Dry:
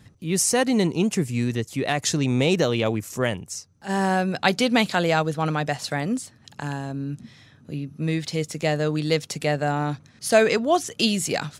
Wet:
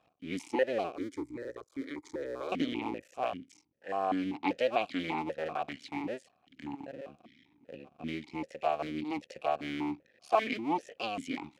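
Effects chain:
sub-harmonics by changed cycles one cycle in 2, muted
0:00.96–0:02.52: phaser with its sweep stopped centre 730 Hz, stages 6
formant filter that steps through the vowels 5.1 Hz
level +3.5 dB

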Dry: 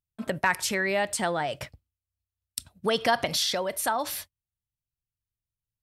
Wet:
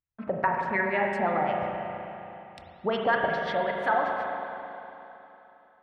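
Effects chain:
auto-filter low-pass sine 5.5 Hz 700–2,100 Hz
spring reverb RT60 3.2 s, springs 35/45 ms, chirp 75 ms, DRR 0 dB
level −4 dB

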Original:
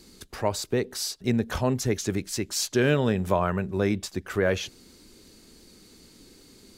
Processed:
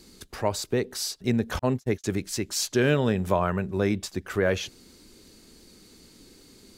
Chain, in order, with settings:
0:01.59–0:02.04: noise gate −25 dBFS, range −50 dB

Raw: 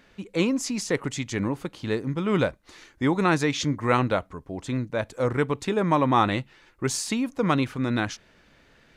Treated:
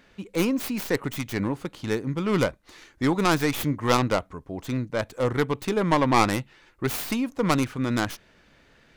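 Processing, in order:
stylus tracing distortion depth 0.34 ms

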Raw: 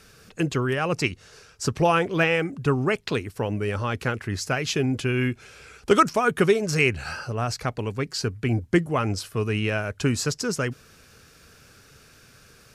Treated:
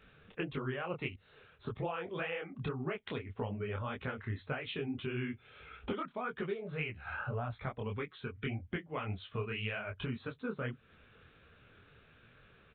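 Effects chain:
noise reduction from a noise print of the clip's start 9 dB
0:07.89–0:09.90: parametric band 2,800 Hz +7 dB 2.1 octaves
downward compressor 12 to 1, threshold −36 dBFS, peak gain reduction 24 dB
downsampling to 8,000 Hz
micro pitch shift up and down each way 60 cents
level +5 dB

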